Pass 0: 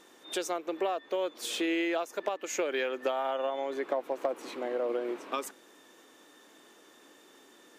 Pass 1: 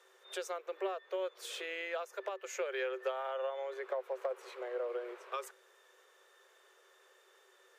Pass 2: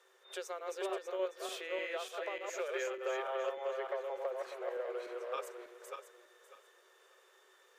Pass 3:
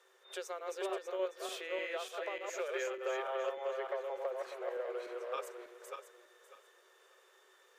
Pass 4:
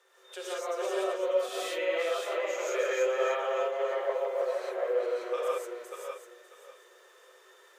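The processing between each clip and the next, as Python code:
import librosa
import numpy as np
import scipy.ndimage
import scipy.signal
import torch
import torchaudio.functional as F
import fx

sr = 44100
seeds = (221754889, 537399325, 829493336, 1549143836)

y1 = scipy.signal.sosfilt(scipy.signal.cheby1(6, 6, 370.0, 'highpass', fs=sr, output='sos'), x)
y1 = y1 * librosa.db_to_amplitude(-3.5)
y2 = fx.reverse_delay_fb(y1, sr, ms=298, feedback_pct=46, wet_db=-2.0)
y2 = y2 * librosa.db_to_amplitude(-2.5)
y3 = y2
y4 = fx.rev_gated(y3, sr, seeds[0], gate_ms=200, shape='rising', drr_db=-6.0)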